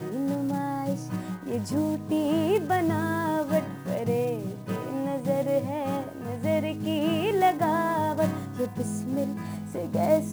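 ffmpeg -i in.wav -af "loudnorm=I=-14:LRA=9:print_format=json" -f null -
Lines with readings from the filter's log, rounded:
"input_i" : "-27.5",
"input_tp" : "-10.5",
"input_lra" : "1.7",
"input_thresh" : "-37.5",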